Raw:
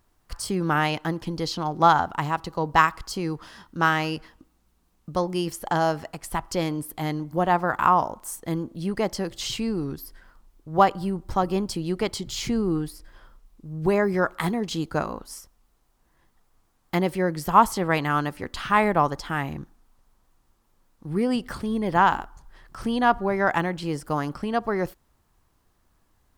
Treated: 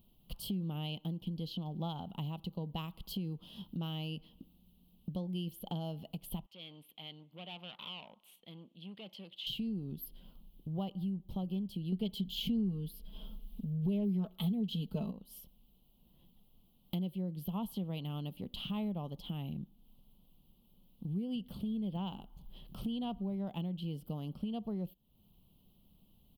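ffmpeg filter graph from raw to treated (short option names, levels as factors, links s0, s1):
-filter_complex "[0:a]asettb=1/sr,asplit=3[s0][s1][s2];[s0]atrim=end=6.464[s3];[s1]atrim=start=6.46:end=9.47,asetpts=PTS-STARTPTS,afade=t=in:d=0.004:c=qsin,afade=t=out:st=3.006:d=0.004:c=qsin,aeval=exprs='(tanh(17.8*val(0)+0.4)-tanh(0.4))/17.8':c=same,bandpass=f=2000:t=q:w=1.9[s4];[s2]atrim=start=9.466[s5];[s3][s4]acrossfade=d=0.004:c1=hsin:c2=qsin[s6];[s6][s5]acrossfade=d=0.004:c1=qsin:c2=hsin,asettb=1/sr,asplit=3[s7][s8][s9];[s7]atrim=end=11.924[s10];[s8]atrim=start=11.92:end=15.11,asetpts=PTS-STARTPTS,afade=t=in:d=0.004:c=qsin,afade=t=out:st=3.186:d=0.004:c=qsin,aecho=1:1:4.6:0.87,atrim=end_sample=140679,acontrast=72,asoftclip=type=hard:threshold=0.531[s11];[s9]atrim=start=15.106[s12];[s10][s11]acrossfade=d=0.004:c1=hsin:c2=qsin[s13];[s13][s12]acrossfade=d=0.004:c1=qsin:c2=hsin,firequalizer=gain_entry='entry(100,0);entry(190,13);entry(300,-2);entry(560,-2);entry(1700,-28);entry(3000,9);entry(5500,-15);entry(7900,-15);entry(12000,6)':delay=0.05:min_phase=1,acompressor=threshold=0.01:ratio=3,volume=0.841"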